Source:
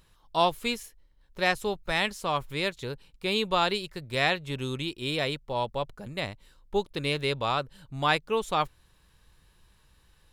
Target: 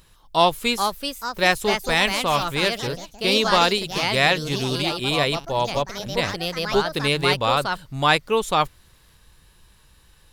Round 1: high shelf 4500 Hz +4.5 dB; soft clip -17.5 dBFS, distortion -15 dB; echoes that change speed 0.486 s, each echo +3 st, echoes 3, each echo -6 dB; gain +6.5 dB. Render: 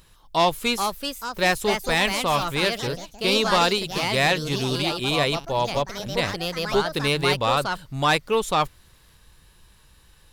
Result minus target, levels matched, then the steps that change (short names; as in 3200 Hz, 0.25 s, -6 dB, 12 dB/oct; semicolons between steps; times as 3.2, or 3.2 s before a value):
soft clip: distortion +18 dB
change: soft clip -5.5 dBFS, distortion -33 dB